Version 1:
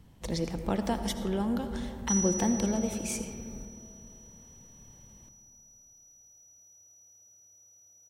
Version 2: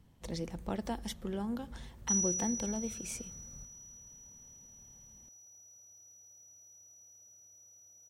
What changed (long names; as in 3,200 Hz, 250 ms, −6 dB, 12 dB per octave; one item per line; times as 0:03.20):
speech −5.5 dB
reverb: off